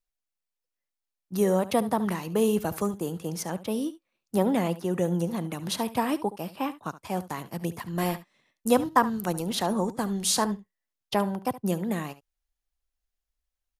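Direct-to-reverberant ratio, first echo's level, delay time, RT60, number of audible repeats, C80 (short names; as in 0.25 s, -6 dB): none, -16.0 dB, 71 ms, none, 1, none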